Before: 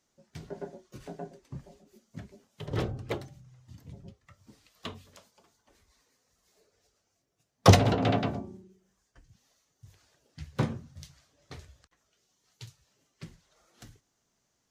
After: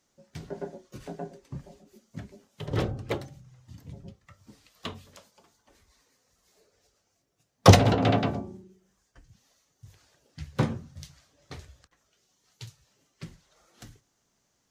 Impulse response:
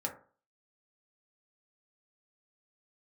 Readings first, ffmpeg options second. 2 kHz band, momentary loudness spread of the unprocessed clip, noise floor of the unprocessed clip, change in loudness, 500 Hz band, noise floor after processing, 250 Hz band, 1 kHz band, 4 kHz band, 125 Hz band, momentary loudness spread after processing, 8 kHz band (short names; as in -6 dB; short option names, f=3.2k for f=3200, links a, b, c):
+3.0 dB, 25 LU, -77 dBFS, +2.5 dB, +3.0 dB, -74 dBFS, +3.0 dB, +3.0 dB, +3.0 dB, +3.0 dB, 26 LU, +3.0 dB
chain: -filter_complex "[0:a]asplit=2[a][b];[1:a]atrim=start_sample=2205[c];[b][c]afir=irnorm=-1:irlink=0,volume=-17dB[d];[a][d]amix=inputs=2:normalize=0,volume=2dB"